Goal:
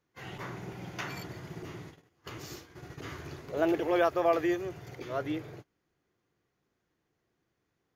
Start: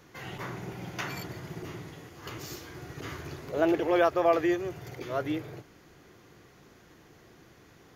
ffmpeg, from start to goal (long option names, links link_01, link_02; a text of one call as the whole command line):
ffmpeg -i in.wav -af "agate=range=-21dB:threshold=-43dB:ratio=16:detection=peak,asetnsamples=nb_out_samples=441:pad=0,asendcmd='3.57 highshelf g 4;4.65 highshelf g -6',highshelf=frequency=11000:gain=-6,volume=-2.5dB" out.wav